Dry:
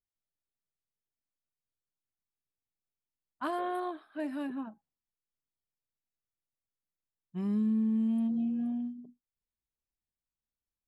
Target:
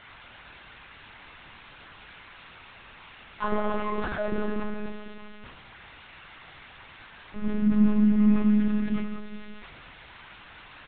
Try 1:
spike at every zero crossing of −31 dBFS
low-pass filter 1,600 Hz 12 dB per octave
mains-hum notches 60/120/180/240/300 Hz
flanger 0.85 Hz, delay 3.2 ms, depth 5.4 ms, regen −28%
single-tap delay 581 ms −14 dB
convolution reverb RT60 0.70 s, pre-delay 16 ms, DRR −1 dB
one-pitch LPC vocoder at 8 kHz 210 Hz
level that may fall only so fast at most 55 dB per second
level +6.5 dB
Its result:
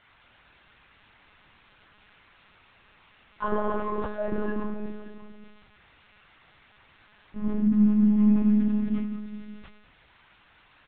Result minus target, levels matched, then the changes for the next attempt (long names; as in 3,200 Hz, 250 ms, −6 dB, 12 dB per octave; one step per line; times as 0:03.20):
spike at every zero crossing: distortion −11 dB
change: spike at every zero crossing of −20 dBFS